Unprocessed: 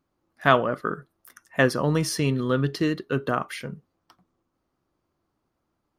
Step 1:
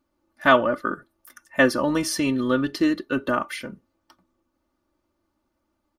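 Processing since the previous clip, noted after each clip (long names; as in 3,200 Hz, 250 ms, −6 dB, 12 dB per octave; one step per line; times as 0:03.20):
comb filter 3.4 ms, depth 76%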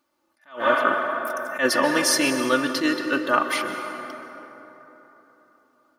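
high-pass filter 820 Hz 6 dB per octave
on a send at −7 dB: convolution reverb RT60 3.8 s, pre-delay 118 ms
on the sum: level that may rise only so fast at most 170 dB per second
level +7 dB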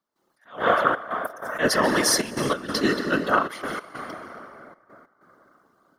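notch filter 2,500 Hz, Q 5.2
gate pattern ".xxxxx.x" 95 BPM −12 dB
random phases in short frames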